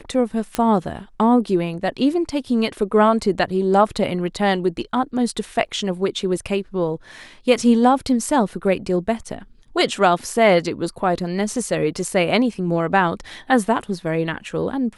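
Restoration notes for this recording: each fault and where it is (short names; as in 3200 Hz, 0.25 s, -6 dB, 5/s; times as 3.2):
0.55 pop -7 dBFS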